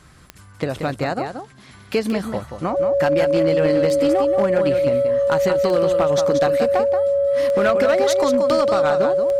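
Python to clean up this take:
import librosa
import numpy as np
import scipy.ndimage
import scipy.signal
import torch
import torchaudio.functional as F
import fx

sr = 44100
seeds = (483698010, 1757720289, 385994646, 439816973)

y = fx.fix_declip(x, sr, threshold_db=-11.0)
y = fx.fix_declick_ar(y, sr, threshold=10.0)
y = fx.notch(y, sr, hz=560.0, q=30.0)
y = fx.fix_echo_inverse(y, sr, delay_ms=180, level_db=-7.5)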